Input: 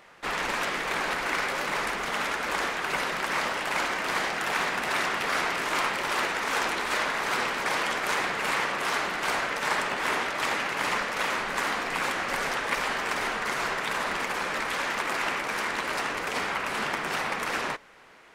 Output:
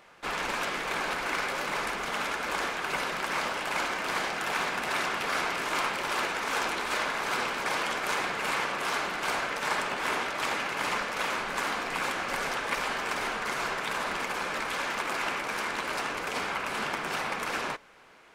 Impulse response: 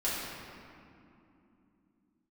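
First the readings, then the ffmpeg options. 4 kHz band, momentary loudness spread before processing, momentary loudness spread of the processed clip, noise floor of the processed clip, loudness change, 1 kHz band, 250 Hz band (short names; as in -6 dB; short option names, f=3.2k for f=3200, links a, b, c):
-2.0 dB, 2 LU, 2 LU, -35 dBFS, -2.5 dB, -2.0 dB, -2.0 dB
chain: -af "bandreject=f=1.9k:w=15,volume=-2dB"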